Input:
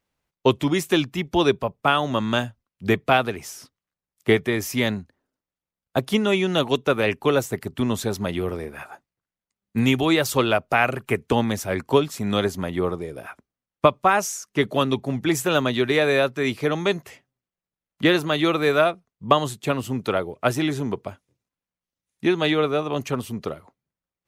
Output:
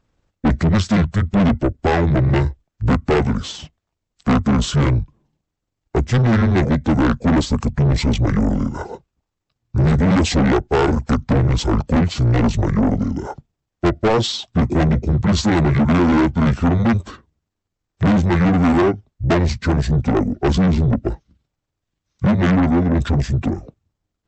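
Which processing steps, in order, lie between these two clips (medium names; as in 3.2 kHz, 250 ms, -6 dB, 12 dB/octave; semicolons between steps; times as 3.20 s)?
rotating-head pitch shifter -9.5 st; bass shelf 370 Hz +10.5 dB; saturation -20 dBFS, distortion -5 dB; brick-wall FIR low-pass 8.1 kHz; trim +8 dB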